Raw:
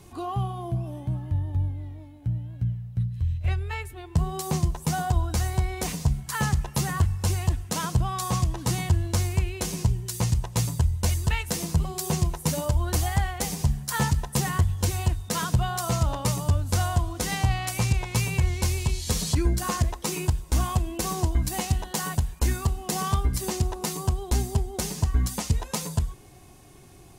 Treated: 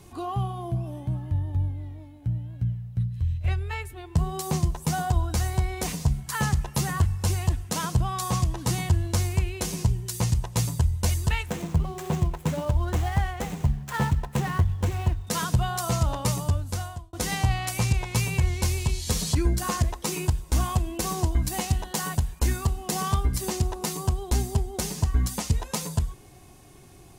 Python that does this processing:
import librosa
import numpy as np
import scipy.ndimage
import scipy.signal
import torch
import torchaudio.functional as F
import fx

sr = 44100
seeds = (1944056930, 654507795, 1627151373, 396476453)

y = fx.median_filter(x, sr, points=9, at=(11.46, 15.27))
y = fx.edit(y, sr, fx.fade_out_span(start_s=16.37, length_s=0.76), tone=tone)